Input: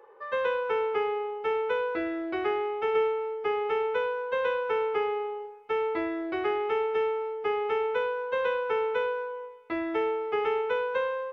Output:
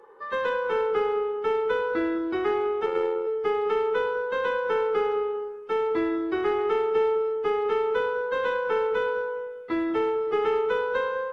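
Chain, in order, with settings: fifteen-band EQ 100 Hz -5 dB, 250 Hz +4 dB, 630 Hz -9 dB, 2500 Hz -9 dB; in parallel at -7 dB: hard clip -26.5 dBFS, distortion -16 dB; on the sum: analogue delay 0.202 s, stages 2048, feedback 39%, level -11 dB; 2.86–3.27 AM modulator 86 Hz, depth 60%; gain +2 dB; AAC 32 kbps 44100 Hz

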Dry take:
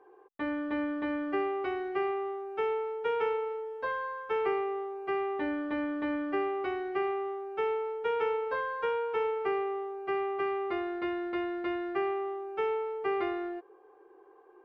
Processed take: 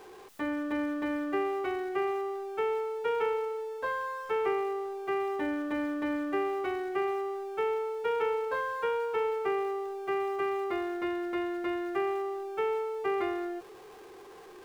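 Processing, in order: zero-crossing step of -47.5 dBFS

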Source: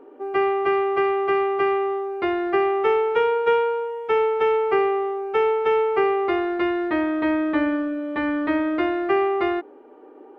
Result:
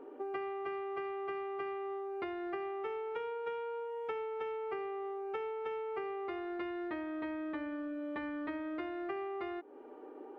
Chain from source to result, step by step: compressor 10:1, threshold -33 dBFS, peak gain reduction 18 dB; gain -4 dB

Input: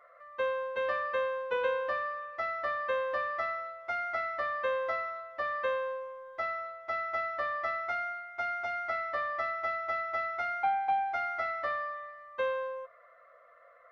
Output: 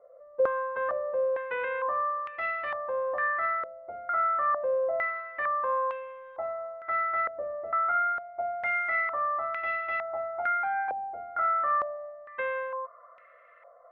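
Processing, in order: limiter -27 dBFS, peak gain reduction 7.5 dB; stepped low-pass 2.2 Hz 520–2600 Hz

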